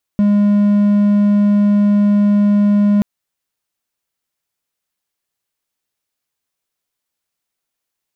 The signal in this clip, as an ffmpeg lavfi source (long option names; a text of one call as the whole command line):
ffmpeg -f lavfi -i "aevalsrc='0.447*(1-4*abs(mod(205*t+0.25,1)-0.5))':duration=2.83:sample_rate=44100" out.wav